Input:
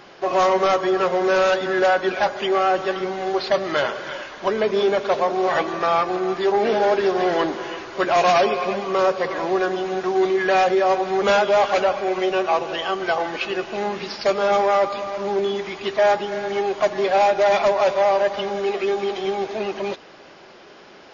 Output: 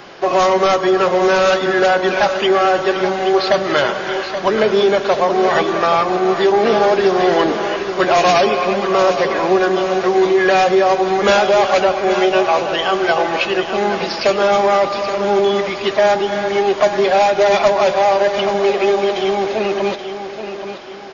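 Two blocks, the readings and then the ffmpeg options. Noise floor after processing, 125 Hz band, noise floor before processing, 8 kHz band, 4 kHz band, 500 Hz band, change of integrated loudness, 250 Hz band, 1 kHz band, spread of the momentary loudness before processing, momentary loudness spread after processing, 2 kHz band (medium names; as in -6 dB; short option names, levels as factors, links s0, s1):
-27 dBFS, +8.0 dB, -45 dBFS, no reading, +7.5 dB, +5.5 dB, +5.5 dB, +7.0 dB, +5.0 dB, 8 LU, 6 LU, +6.0 dB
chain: -filter_complex "[0:a]acrossover=split=270|3000[s0][s1][s2];[s1]acompressor=threshold=0.0891:ratio=2[s3];[s0][s3][s2]amix=inputs=3:normalize=0,aecho=1:1:827|1654|2481|3308:0.335|0.134|0.0536|0.0214,volume=2.37"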